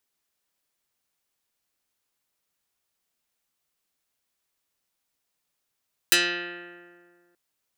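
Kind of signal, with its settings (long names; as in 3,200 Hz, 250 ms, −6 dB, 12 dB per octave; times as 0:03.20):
Karplus-Strong string F3, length 1.23 s, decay 1.98 s, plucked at 0.16, dark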